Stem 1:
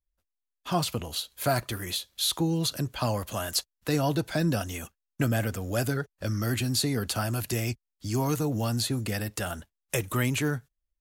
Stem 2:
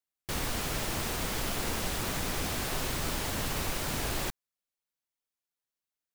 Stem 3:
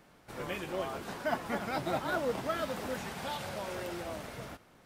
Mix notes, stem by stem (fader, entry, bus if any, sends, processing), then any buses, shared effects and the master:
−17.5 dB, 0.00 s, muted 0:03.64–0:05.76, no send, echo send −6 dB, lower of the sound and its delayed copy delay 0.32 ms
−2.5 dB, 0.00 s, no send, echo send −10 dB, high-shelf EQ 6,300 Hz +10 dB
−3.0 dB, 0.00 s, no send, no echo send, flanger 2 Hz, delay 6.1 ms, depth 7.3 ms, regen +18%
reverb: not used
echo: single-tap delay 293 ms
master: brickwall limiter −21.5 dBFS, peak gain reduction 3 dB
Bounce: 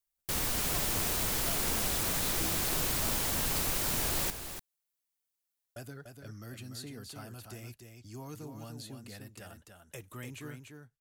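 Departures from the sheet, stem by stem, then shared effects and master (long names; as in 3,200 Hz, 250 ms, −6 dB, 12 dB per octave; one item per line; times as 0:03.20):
stem 1: missing lower of the sound and its delayed copy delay 0.32 ms
stem 3: muted
master: missing brickwall limiter −21.5 dBFS, peak gain reduction 3 dB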